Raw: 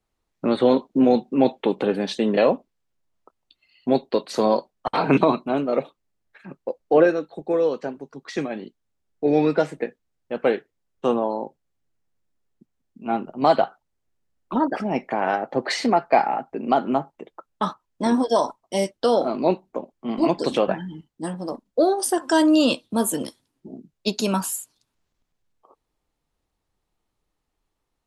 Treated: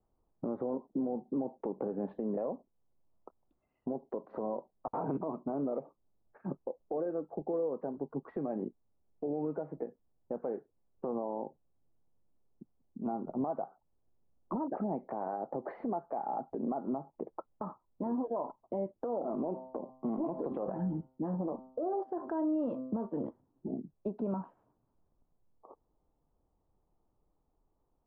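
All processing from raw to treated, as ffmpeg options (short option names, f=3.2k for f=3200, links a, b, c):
-filter_complex "[0:a]asettb=1/sr,asplit=3[a][b][c];[a]atrim=end=19.224[d];[b]atrim=start=19.22:end=23.24,asetpts=PTS-STARTPTS,afade=t=in:d=0.004:c=qsin,afade=t=out:st=4.016:d=0.004:c=qsin,bandreject=f=129.5:t=h:w=4,bandreject=f=259:t=h:w=4,bandreject=f=388.5:t=h:w=4,bandreject=f=518:t=h:w=4,bandreject=f=647.5:t=h:w=4,bandreject=f=777:t=h:w=4,bandreject=f=906.5:t=h:w=4,bandreject=f=1.036k:t=h:w=4,bandreject=f=1.1655k:t=h:w=4,bandreject=f=1.295k:t=h:w=4,bandreject=f=1.4245k:t=h:w=4,acompressor=threshold=-21dB:ratio=6:attack=3.2:release=140:knee=1:detection=peak,highshelf=f=3.2k:g=7.5[e];[c]atrim=start=23.236[f];[d][e]acrossfade=d=0.004:c1=hsin:c2=qsin[g];[g][f]acrossfade=d=0.004:c1=qsin:c2=hsin,acompressor=threshold=-29dB:ratio=6,lowpass=f=1k:w=0.5412,lowpass=f=1k:w=1.3066,alimiter=level_in=4dB:limit=-24dB:level=0:latency=1:release=129,volume=-4dB,volume=2dB"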